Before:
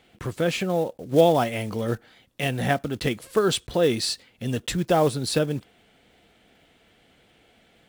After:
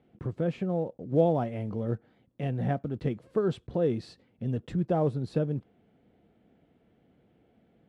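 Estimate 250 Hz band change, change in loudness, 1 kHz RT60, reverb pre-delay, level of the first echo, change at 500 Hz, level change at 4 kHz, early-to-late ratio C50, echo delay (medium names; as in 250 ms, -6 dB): -4.0 dB, -6.0 dB, no reverb, no reverb, no echo, -6.5 dB, -22.5 dB, no reverb, no echo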